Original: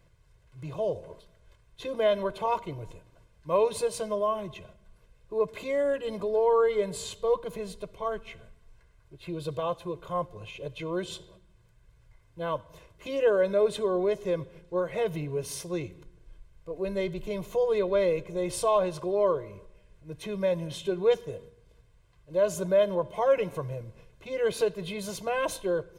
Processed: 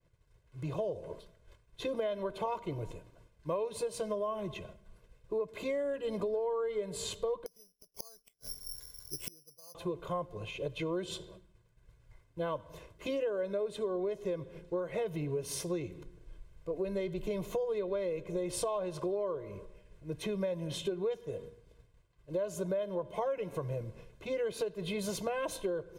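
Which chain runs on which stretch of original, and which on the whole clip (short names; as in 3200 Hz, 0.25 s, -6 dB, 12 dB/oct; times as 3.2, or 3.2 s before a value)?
7.46–9.75 flipped gate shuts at -34 dBFS, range -33 dB + careless resampling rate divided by 8×, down filtered, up zero stuff
whole clip: expander -54 dBFS; bell 330 Hz +4 dB 1.7 oct; compressor 10:1, threshold -31 dBFS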